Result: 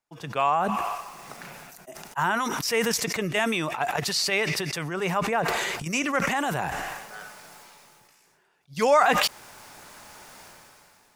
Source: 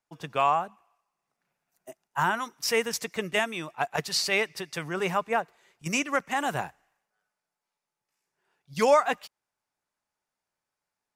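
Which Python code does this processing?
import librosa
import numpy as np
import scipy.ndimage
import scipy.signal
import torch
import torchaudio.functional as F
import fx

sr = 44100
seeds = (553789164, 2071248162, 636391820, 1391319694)

y = fx.sustainer(x, sr, db_per_s=21.0)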